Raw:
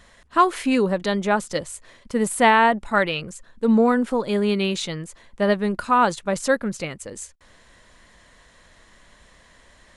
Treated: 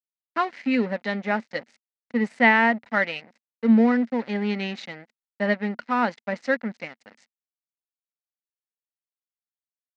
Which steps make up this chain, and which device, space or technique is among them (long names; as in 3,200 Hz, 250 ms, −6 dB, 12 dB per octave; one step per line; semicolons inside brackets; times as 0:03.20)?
blown loudspeaker (dead-zone distortion −32.5 dBFS; loudspeaker in its box 220–4,700 Hz, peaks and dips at 230 Hz +9 dB, 360 Hz −8 dB, 1,100 Hz −8 dB, 2,000 Hz +9 dB, 3,400 Hz −6 dB)
level −2.5 dB